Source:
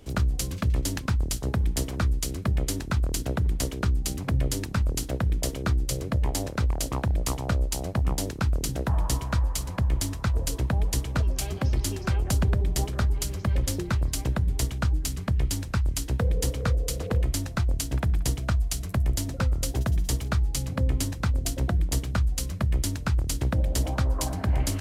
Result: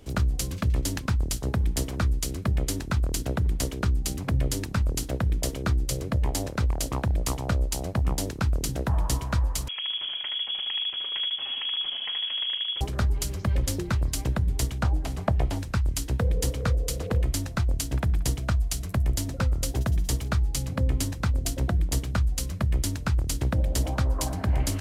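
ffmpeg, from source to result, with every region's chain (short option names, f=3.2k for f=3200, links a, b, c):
-filter_complex "[0:a]asettb=1/sr,asplit=3[a][b][c];[a]atrim=end=9.684[d];[b]atrim=start=9.68:end=12.81,asetpts=PTS-STARTPTS,afade=t=in:d=0.004:c=qsin,afade=t=out:st=3.126:d=0.004:c=qsin,asoftclip=type=hard:threshold=-30.5dB,aecho=1:1:75|150|225|300|375|450:0.631|0.297|0.139|0.0655|0.0308|0.0145,atrim=end_sample=138033,lowpass=f=2.9k:t=q:w=0.5098,lowpass=f=2.9k:t=q:w=0.6013,lowpass=f=2.9k:t=q:w=0.9,lowpass=f=2.9k:t=q:w=2.563,afreqshift=-3400[e];[c]atrim=start=12.806[f];[d][e]acrossfade=d=0.004:c1=hsin:c2=qsin[g];[g][f]acrossfade=d=0.004:c1=qsin:c2=hsin,asettb=1/sr,asplit=3[h][i][j];[h]atrim=end=14.834[k];[i]atrim=start=14.83:end=15.59,asetpts=PTS-STARTPTS,afade=t=in:d=0.004:c=qsin,afade=t=out:st=0.756:d=0.004:c=qsin,acrossover=split=3200[l][m];[m]acompressor=threshold=-43dB:ratio=4:attack=1:release=60[n];[l][n]amix=inputs=2:normalize=0,equalizer=f=720:w=1.3:g=14[o];[j]atrim=start=15.586[p];[k][o]acrossfade=d=0.004:c1=hsin:c2=qsin[q];[q][p]acrossfade=d=0.004:c1=qsin:c2=hsin"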